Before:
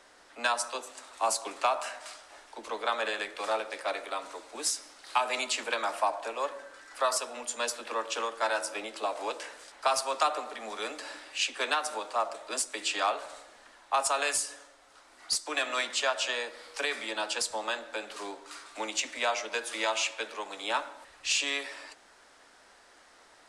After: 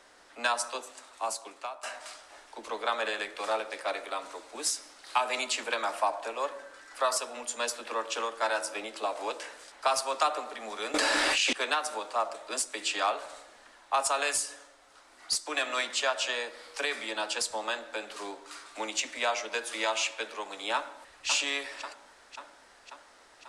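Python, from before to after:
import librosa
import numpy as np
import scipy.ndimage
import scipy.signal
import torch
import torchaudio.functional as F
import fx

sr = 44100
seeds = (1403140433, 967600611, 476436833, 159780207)

y = fx.env_flatten(x, sr, amount_pct=100, at=(10.94, 11.53))
y = fx.echo_throw(y, sr, start_s=20.75, length_s=0.52, ms=540, feedback_pct=65, wet_db=-5.5)
y = fx.edit(y, sr, fx.fade_out_to(start_s=0.72, length_s=1.11, floor_db=-16.5), tone=tone)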